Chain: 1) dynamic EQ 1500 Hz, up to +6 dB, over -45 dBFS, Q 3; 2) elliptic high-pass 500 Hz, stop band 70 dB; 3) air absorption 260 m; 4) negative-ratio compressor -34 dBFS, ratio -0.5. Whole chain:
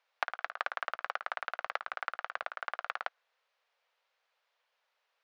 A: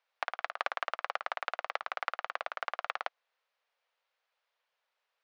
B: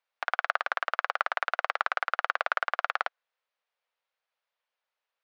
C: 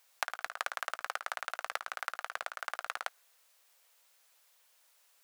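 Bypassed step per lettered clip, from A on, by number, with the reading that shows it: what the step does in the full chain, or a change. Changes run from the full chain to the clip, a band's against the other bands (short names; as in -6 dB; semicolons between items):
1, loudness change +1.0 LU; 4, crest factor change -3.5 dB; 3, 4 kHz band +5.0 dB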